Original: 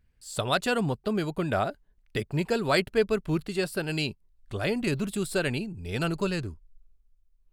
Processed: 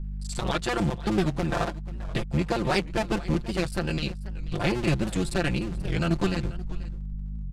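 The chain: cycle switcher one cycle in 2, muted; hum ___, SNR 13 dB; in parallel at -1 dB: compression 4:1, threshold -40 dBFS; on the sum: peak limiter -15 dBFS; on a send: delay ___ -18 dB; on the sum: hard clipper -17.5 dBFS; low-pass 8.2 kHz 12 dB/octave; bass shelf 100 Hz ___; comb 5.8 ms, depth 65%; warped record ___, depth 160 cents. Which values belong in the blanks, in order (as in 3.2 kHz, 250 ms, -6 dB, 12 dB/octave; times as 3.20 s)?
50 Hz, 486 ms, +10 dB, 78 rpm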